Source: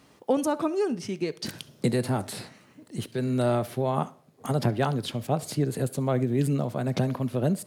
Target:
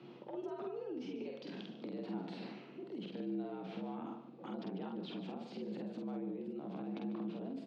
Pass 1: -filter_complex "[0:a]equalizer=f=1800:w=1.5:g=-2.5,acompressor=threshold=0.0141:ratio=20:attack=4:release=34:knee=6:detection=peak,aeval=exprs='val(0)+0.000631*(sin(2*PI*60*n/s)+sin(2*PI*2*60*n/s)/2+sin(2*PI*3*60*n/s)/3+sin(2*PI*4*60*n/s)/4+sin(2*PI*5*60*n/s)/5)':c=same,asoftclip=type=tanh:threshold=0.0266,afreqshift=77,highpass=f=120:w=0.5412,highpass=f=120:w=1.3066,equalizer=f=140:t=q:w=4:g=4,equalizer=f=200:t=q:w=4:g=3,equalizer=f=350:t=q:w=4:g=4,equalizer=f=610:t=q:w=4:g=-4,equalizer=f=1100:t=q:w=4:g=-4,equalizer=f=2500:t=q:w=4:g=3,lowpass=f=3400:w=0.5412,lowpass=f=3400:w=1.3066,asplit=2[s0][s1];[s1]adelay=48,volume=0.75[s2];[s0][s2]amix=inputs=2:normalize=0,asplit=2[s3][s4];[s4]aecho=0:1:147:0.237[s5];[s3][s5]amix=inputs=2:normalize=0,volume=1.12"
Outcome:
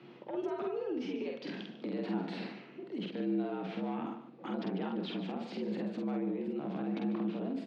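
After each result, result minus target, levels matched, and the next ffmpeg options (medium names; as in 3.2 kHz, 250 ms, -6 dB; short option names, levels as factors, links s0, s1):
compression: peak gain reduction -7.5 dB; 2 kHz band +2.5 dB
-filter_complex "[0:a]equalizer=f=1800:w=1.5:g=-2.5,acompressor=threshold=0.00562:ratio=20:attack=4:release=34:knee=6:detection=peak,aeval=exprs='val(0)+0.000631*(sin(2*PI*60*n/s)+sin(2*PI*2*60*n/s)/2+sin(2*PI*3*60*n/s)/3+sin(2*PI*4*60*n/s)/4+sin(2*PI*5*60*n/s)/5)':c=same,asoftclip=type=tanh:threshold=0.0266,afreqshift=77,highpass=f=120:w=0.5412,highpass=f=120:w=1.3066,equalizer=f=140:t=q:w=4:g=4,equalizer=f=200:t=q:w=4:g=3,equalizer=f=350:t=q:w=4:g=4,equalizer=f=610:t=q:w=4:g=-4,equalizer=f=1100:t=q:w=4:g=-4,equalizer=f=2500:t=q:w=4:g=3,lowpass=f=3400:w=0.5412,lowpass=f=3400:w=1.3066,asplit=2[s0][s1];[s1]adelay=48,volume=0.75[s2];[s0][s2]amix=inputs=2:normalize=0,asplit=2[s3][s4];[s4]aecho=0:1:147:0.237[s5];[s3][s5]amix=inputs=2:normalize=0,volume=1.12"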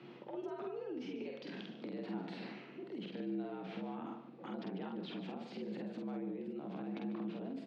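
2 kHz band +4.0 dB
-filter_complex "[0:a]equalizer=f=1800:w=1.5:g=-9,acompressor=threshold=0.00562:ratio=20:attack=4:release=34:knee=6:detection=peak,aeval=exprs='val(0)+0.000631*(sin(2*PI*60*n/s)+sin(2*PI*2*60*n/s)/2+sin(2*PI*3*60*n/s)/3+sin(2*PI*4*60*n/s)/4+sin(2*PI*5*60*n/s)/5)':c=same,asoftclip=type=tanh:threshold=0.0266,afreqshift=77,highpass=f=120:w=0.5412,highpass=f=120:w=1.3066,equalizer=f=140:t=q:w=4:g=4,equalizer=f=200:t=q:w=4:g=3,equalizer=f=350:t=q:w=4:g=4,equalizer=f=610:t=q:w=4:g=-4,equalizer=f=1100:t=q:w=4:g=-4,equalizer=f=2500:t=q:w=4:g=3,lowpass=f=3400:w=0.5412,lowpass=f=3400:w=1.3066,asplit=2[s0][s1];[s1]adelay=48,volume=0.75[s2];[s0][s2]amix=inputs=2:normalize=0,asplit=2[s3][s4];[s4]aecho=0:1:147:0.237[s5];[s3][s5]amix=inputs=2:normalize=0,volume=1.12"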